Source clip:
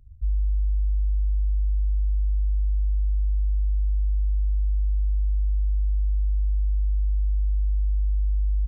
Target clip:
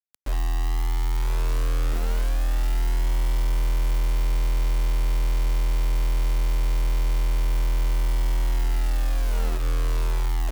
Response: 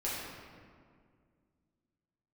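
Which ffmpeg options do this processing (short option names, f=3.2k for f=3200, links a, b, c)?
-filter_complex "[0:a]dynaudnorm=f=500:g=7:m=9dB,acrusher=bits=3:mode=log:mix=0:aa=0.000001,asetrate=36382,aresample=44100,aeval=exprs='0.282*(cos(1*acos(clip(val(0)/0.282,-1,1)))-cos(1*PI/2))+0.00316*(cos(2*acos(clip(val(0)/0.282,-1,1)))-cos(2*PI/2))+0.0398*(cos(5*acos(clip(val(0)/0.282,-1,1)))-cos(5*PI/2))':c=same,asplit=2[a][b];[1:a]atrim=start_sample=2205,atrim=end_sample=4410[c];[b][c]afir=irnorm=-1:irlink=0,volume=-21.5dB[d];[a][d]amix=inputs=2:normalize=0,acrusher=bits=4:mix=0:aa=0.000001,equalizer=f=120:w=0.94:g=-9,alimiter=limit=-14.5dB:level=0:latency=1:release=93,volume=-1.5dB"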